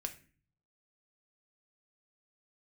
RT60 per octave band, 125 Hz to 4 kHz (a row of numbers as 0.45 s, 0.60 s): 0.95 s, 0.65 s, 0.45 s, 0.35 s, 0.45 s, 0.30 s